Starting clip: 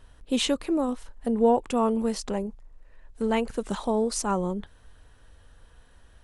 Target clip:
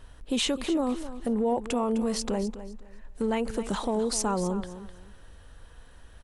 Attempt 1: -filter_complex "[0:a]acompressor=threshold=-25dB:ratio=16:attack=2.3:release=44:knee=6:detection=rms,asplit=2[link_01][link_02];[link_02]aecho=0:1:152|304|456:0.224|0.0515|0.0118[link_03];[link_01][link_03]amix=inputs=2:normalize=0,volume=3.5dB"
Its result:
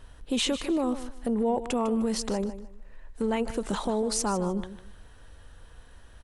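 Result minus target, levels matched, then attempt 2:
echo 104 ms early
-filter_complex "[0:a]acompressor=threshold=-25dB:ratio=16:attack=2.3:release=44:knee=6:detection=rms,asplit=2[link_01][link_02];[link_02]aecho=0:1:256|512|768:0.224|0.0515|0.0118[link_03];[link_01][link_03]amix=inputs=2:normalize=0,volume=3.5dB"

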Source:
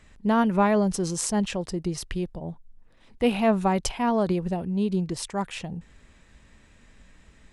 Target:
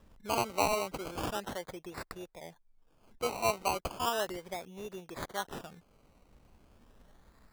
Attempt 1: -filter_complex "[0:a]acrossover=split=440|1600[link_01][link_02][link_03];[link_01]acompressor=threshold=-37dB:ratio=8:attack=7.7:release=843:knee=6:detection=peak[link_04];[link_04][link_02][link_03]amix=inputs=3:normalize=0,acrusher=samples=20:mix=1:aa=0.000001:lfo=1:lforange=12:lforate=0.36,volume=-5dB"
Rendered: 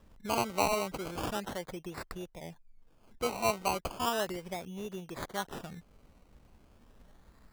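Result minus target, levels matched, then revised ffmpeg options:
downward compressor: peak gain reduction −9 dB
-filter_complex "[0:a]acrossover=split=440|1600[link_01][link_02][link_03];[link_01]acompressor=threshold=-47.5dB:ratio=8:attack=7.7:release=843:knee=6:detection=peak[link_04];[link_04][link_02][link_03]amix=inputs=3:normalize=0,acrusher=samples=20:mix=1:aa=0.000001:lfo=1:lforange=12:lforate=0.36,volume=-5dB"

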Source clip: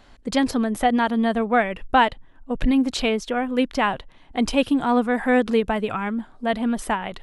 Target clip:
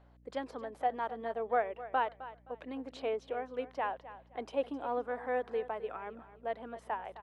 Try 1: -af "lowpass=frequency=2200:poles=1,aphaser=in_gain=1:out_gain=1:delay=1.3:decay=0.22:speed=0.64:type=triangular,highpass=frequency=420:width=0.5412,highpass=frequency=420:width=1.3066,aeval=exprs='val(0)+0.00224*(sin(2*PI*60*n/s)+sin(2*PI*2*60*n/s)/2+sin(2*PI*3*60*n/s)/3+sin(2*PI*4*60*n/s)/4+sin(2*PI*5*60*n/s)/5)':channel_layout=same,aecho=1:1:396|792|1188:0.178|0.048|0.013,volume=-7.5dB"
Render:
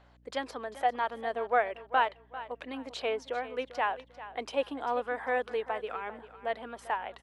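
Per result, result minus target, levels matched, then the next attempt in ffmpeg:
echo 135 ms late; 2,000 Hz band +4.0 dB
-af "lowpass=frequency=2200:poles=1,aphaser=in_gain=1:out_gain=1:delay=1.3:decay=0.22:speed=0.64:type=triangular,highpass=frequency=420:width=0.5412,highpass=frequency=420:width=1.3066,aeval=exprs='val(0)+0.00224*(sin(2*PI*60*n/s)+sin(2*PI*2*60*n/s)/2+sin(2*PI*3*60*n/s)/3+sin(2*PI*4*60*n/s)/4+sin(2*PI*5*60*n/s)/5)':channel_layout=same,aecho=1:1:261|522|783:0.178|0.048|0.013,volume=-7.5dB"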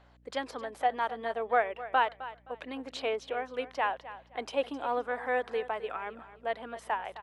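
2,000 Hz band +4.0 dB
-af "lowpass=frequency=560:poles=1,aphaser=in_gain=1:out_gain=1:delay=1.3:decay=0.22:speed=0.64:type=triangular,highpass=frequency=420:width=0.5412,highpass=frequency=420:width=1.3066,aeval=exprs='val(0)+0.00224*(sin(2*PI*60*n/s)+sin(2*PI*2*60*n/s)/2+sin(2*PI*3*60*n/s)/3+sin(2*PI*4*60*n/s)/4+sin(2*PI*5*60*n/s)/5)':channel_layout=same,aecho=1:1:261|522|783:0.178|0.048|0.013,volume=-7.5dB"

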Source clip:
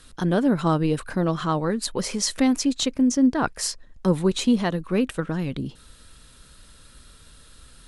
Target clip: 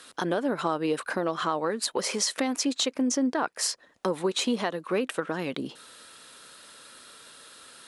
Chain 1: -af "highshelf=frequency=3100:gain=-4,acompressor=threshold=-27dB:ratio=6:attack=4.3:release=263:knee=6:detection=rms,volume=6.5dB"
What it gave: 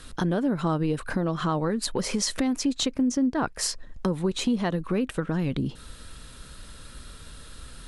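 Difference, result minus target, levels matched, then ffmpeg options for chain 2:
500 Hz band −2.5 dB
-af "highpass=420,highshelf=frequency=3100:gain=-4,acompressor=threshold=-27dB:ratio=6:attack=4.3:release=263:knee=6:detection=rms,volume=6.5dB"

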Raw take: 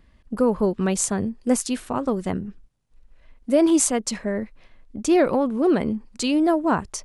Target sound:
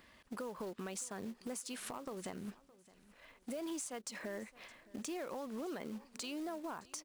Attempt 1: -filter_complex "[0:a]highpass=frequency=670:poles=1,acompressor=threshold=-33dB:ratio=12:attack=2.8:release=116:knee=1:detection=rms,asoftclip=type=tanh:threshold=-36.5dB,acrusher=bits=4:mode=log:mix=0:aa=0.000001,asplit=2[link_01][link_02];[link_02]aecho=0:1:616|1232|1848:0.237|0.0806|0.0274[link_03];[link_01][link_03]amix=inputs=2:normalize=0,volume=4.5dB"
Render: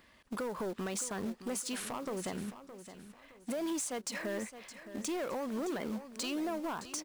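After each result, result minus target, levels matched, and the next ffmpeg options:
downward compressor: peak gain reduction −8.5 dB; echo-to-direct +8.5 dB
-filter_complex "[0:a]highpass=frequency=670:poles=1,acompressor=threshold=-42.5dB:ratio=12:attack=2.8:release=116:knee=1:detection=rms,asoftclip=type=tanh:threshold=-36.5dB,acrusher=bits=4:mode=log:mix=0:aa=0.000001,asplit=2[link_01][link_02];[link_02]aecho=0:1:616|1232|1848:0.237|0.0806|0.0274[link_03];[link_01][link_03]amix=inputs=2:normalize=0,volume=4.5dB"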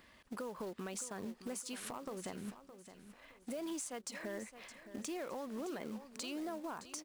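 echo-to-direct +8.5 dB
-filter_complex "[0:a]highpass=frequency=670:poles=1,acompressor=threshold=-42.5dB:ratio=12:attack=2.8:release=116:knee=1:detection=rms,asoftclip=type=tanh:threshold=-36.5dB,acrusher=bits=4:mode=log:mix=0:aa=0.000001,asplit=2[link_01][link_02];[link_02]aecho=0:1:616|1232|1848:0.0891|0.0303|0.0103[link_03];[link_01][link_03]amix=inputs=2:normalize=0,volume=4.5dB"

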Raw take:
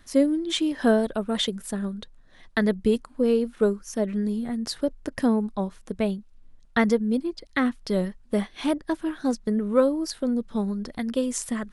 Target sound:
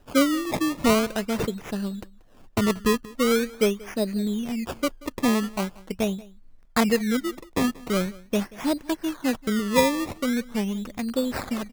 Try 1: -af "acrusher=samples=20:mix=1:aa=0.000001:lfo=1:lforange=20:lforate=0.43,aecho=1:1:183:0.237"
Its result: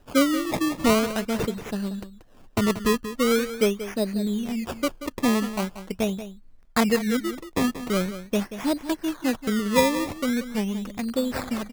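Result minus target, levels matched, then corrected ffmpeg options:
echo-to-direct +9.5 dB
-af "acrusher=samples=20:mix=1:aa=0.000001:lfo=1:lforange=20:lforate=0.43,aecho=1:1:183:0.0794"

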